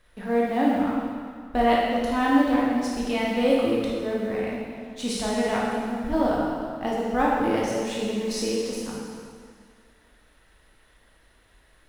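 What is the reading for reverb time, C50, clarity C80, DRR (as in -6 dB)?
2.0 s, -2.0 dB, 0.5 dB, -5.0 dB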